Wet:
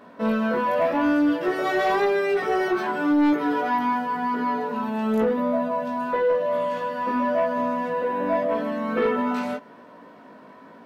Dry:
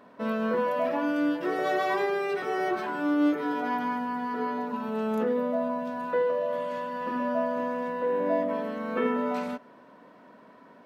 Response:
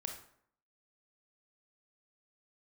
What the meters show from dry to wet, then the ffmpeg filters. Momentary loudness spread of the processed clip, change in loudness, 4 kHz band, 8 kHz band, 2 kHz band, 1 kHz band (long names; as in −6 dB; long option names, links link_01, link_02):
5 LU, +5.0 dB, +5.0 dB, can't be measured, +5.0 dB, +5.5 dB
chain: -af "flanger=delay=17:depth=2.5:speed=0.91,aeval=exprs='0.168*sin(PI/2*1.78*val(0)/0.168)':channel_layout=same"